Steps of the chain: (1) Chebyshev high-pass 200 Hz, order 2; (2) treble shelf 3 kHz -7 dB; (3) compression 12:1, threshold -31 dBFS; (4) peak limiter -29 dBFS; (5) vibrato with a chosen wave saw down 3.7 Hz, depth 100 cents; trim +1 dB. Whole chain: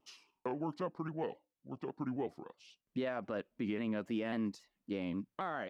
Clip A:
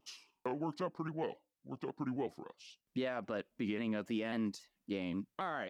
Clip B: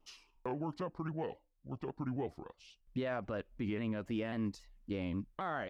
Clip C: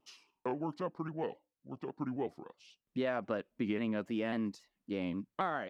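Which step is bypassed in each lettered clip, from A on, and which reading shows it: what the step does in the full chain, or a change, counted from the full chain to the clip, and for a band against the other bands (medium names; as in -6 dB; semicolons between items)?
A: 2, 4 kHz band +3.5 dB; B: 1, 125 Hz band +4.5 dB; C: 4, crest factor change +5.0 dB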